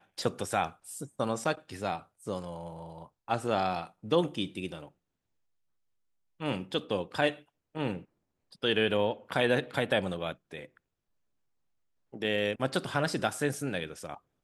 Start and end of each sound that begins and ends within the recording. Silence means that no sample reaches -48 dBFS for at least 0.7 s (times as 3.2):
6.4–10.77